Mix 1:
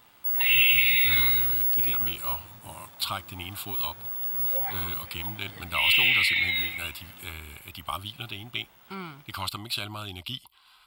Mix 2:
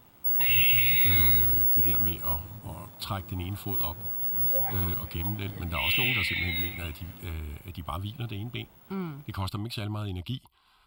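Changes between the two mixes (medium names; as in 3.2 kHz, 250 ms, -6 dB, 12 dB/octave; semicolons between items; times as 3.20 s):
background: add treble shelf 6.9 kHz +10.5 dB; master: add tilt shelf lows +8.5 dB, about 700 Hz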